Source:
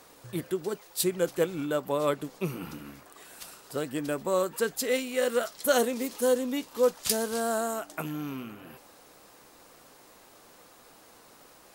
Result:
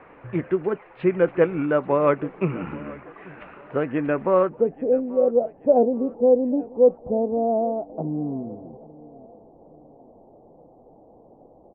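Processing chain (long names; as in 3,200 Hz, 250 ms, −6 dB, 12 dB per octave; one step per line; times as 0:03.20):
Butterworth low-pass 2,500 Hz 48 dB per octave, from 0:04.48 800 Hz
repeating echo 834 ms, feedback 40%, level −21 dB
level +8 dB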